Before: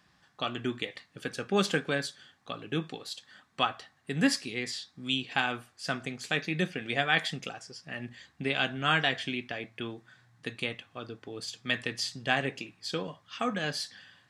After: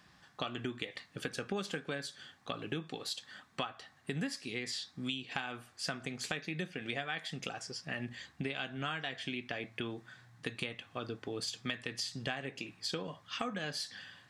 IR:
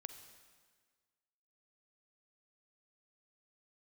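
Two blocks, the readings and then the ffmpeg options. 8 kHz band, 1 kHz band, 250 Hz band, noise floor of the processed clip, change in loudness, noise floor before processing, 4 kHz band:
−3.5 dB, −9.0 dB, −7.0 dB, −65 dBFS, −7.5 dB, −68 dBFS, −6.5 dB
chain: -af "acompressor=threshold=-37dB:ratio=12,volume=3dB"

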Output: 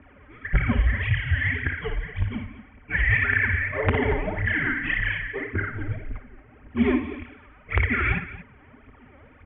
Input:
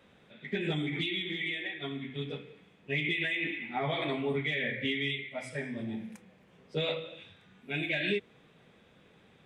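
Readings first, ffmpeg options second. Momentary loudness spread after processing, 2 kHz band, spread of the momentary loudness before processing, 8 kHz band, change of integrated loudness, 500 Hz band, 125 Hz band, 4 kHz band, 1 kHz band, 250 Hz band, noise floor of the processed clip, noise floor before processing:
15 LU, +10.0 dB, 10 LU, below −20 dB, +8.5 dB, +3.5 dB, +13.5 dB, −5.5 dB, +8.0 dB, +7.0 dB, −52 dBFS, −62 dBFS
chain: -af "aeval=exprs='0.1*(cos(1*acos(clip(val(0)/0.1,-1,1)))-cos(1*PI/2))+0.00891*(cos(5*acos(clip(val(0)/0.1,-1,1)))-cos(5*PI/2))':channel_layout=same,aecho=1:1:6:0.98,aphaser=in_gain=1:out_gain=1:delay=4:decay=0.75:speed=1.8:type=triangular,lowshelf=frequency=350:gain=3.5,aresample=8000,aeval=exprs='(mod(2.24*val(0)+1,2)-1)/2.24':channel_layout=same,aresample=44100,aecho=1:1:57|230:0.355|0.178,highpass=frequency=170:width_type=q:width=0.5412,highpass=frequency=170:width_type=q:width=1.307,lowpass=frequency=2600:width_type=q:width=0.5176,lowpass=frequency=2600:width_type=q:width=0.7071,lowpass=frequency=2600:width_type=q:width=1.932,afreqshift=-240,alimiter=level_in=6dB:limit=-1dB:release=50:level=0:latency=1,volume=-5dB"

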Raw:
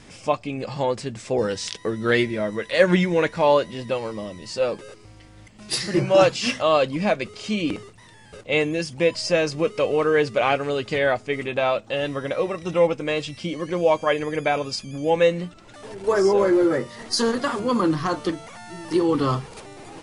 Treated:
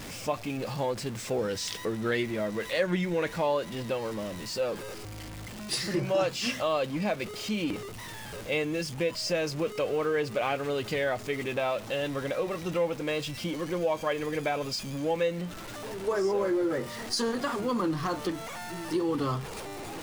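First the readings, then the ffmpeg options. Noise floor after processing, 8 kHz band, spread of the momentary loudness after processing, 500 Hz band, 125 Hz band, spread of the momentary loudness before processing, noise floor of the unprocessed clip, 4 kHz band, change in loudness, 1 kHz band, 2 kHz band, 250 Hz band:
−41 dBFS, −4.0 dB, 9 LU, −8.5 dB, −6.0 dB, 11 LU, −48 dBFS, −5.5 dB, −8.0 dB, −8.0 dB, −7.5 dB, −7.0 dB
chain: -af "aeval=exprs='val(0)+0.5*0.0282*sgn(val(0))':channel_layout=same,acompressor=threshold=-21dB:ratio=2,volume=-6dB"

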